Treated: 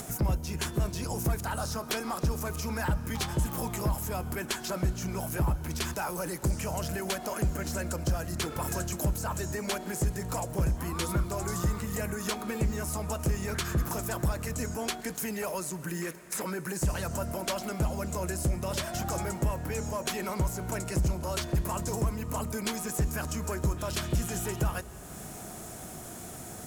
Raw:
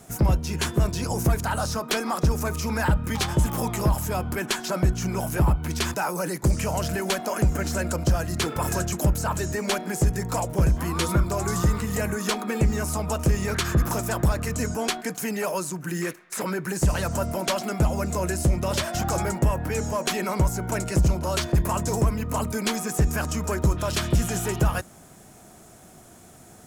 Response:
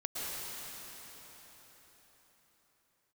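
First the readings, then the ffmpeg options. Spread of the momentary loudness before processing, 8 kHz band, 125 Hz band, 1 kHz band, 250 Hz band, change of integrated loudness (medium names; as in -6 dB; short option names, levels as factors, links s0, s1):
4 LU, -4.5 dB, -7.0 dB, -7.0 dB, -7.0 dB, -7.0 dB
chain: -filter_complex "[0:a]acompressor=mode=upward:threshold=0.0708:ratio=2.5,highshelf=f=11000:g=6.5,asplit=2[s0][s1];[1:a]atrim=start_sample=2205[s2];[s1][s2]afir=irnorm=-1:irlink=0,volume=0.106[s3];[s0][s3]amix=inputs=2:normalize=0,volume=0.398"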